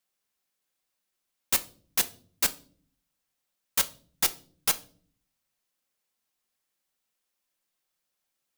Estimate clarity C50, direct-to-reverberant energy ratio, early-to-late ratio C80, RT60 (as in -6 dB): 19.0 dB, 8.5 dB, 24.0 dB, no single decay rate